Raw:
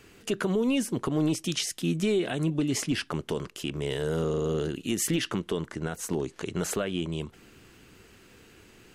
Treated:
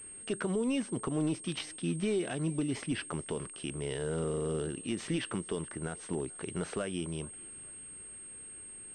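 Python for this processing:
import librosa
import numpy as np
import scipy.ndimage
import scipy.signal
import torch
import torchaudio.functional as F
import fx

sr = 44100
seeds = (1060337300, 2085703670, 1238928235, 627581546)

p1 = x + fx.echo_thinned(x, sr, ms=433, feedback_pct=57, hz=420.0, wet_db=-23.0, dry=0)
p2 = fx.pwm(p1, sr, carrier_hz=8500.0)
y = p2 * librosa.db_to_amplitude(-5.5)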